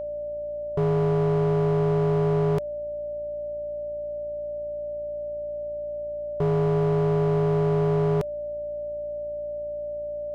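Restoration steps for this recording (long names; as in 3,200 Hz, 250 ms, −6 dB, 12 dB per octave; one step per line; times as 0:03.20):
clipped peaks rebuilt −19 dBFS
hum removal 57.2 Hz, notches 14
notch filter 590 Hz, Q 30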